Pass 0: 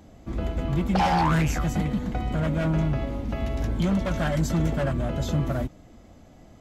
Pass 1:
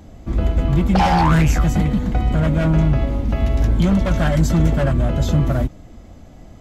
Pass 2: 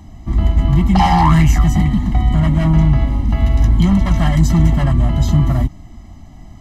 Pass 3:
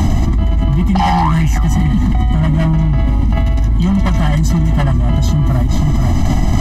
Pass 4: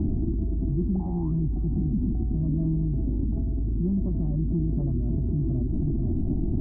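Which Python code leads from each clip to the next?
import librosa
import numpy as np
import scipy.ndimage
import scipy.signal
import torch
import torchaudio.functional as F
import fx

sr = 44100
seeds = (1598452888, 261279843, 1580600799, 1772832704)

y1 = fx.low_shelf(x, sr, hz=100.0, db=8.0)
y1 = F.gain(torch.from_numpy(y1), 5.5).numpy()
y2 = y1 + 0.96 * np.pad(y1, (int(1.0 * sr / 1000.0), 0))[:len(y1)]
y2 = F.gain(torch.from_numpy(y2), -1.0).numpy()
y3 = y2 + 10.0 ** (-23.0 / 20.0) * np.pad(y2, (int(485 * sr / 1000.0), 0))[:len(y2)]
y3 = fx.env_flatten(y3, sr, amount_pct=100)
y3 = F.gain(torch.from_numpy(y3), -4.5).numpy()
y4 = fx.ladder_lowpass(y3, sr, hz=410.0, resonance_pct=60)
y4 = F.gain(torch.from_numpy(y4), -3.5).numpy()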